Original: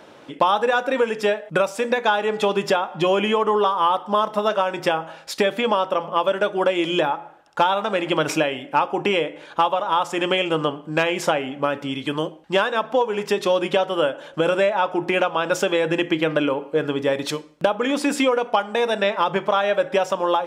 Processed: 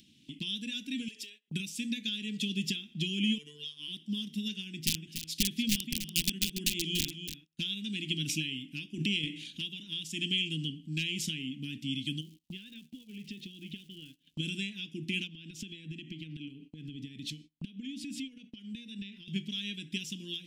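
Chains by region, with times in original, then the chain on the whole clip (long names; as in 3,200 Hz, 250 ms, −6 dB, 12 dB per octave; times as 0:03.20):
0:01.08–0:01.48: downward compressor 8 to 1, threshold −27 dBFS + gain into a clipping stage and back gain 24.5 dB + high-pass filter 370 Hz 24 dB per octave
0:03.38–0:03.88: phases set to zero 148 Hz + bass and treble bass −13 dB, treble 0 dB
0:04.64–0:07.59: high-shelf EQ 2,600 Hz −4 dB + wrap-around overflow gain 11.5 dB + single-tap delay 288 ms −9.5 dB
0:08.94–0:09.61: high-pass filter 110 Hz + transient designer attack 0 dB, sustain +10 dB
0:12.20–0:14.34: low-pass filter 2,900 Hz + downward compressor 2 to 1, threshold −35 dBFS + surface crackle 480 per second −45 dBFS
0:15.27–0:19.28: high-shelf EQ 4,500 Hz −11 dB + downward compressor, threshold −27 dBFS
whole clip: elliptic band-stop filter 240–2,900 Hz, stop band 50 dB; noise gate −48 dBFS, range −25 dB; upward compression, threshold −41 dBFS; level −3.5 dB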